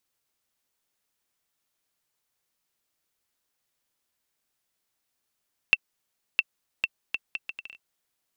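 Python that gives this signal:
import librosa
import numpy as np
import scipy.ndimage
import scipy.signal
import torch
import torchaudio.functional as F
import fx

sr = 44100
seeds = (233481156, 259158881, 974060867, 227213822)

y = fx.bouncing_ball(sr, first_gap_s=0.66, ratio=0.68, hz=2680.0, decay_ms=38.0, level_db=-5.0)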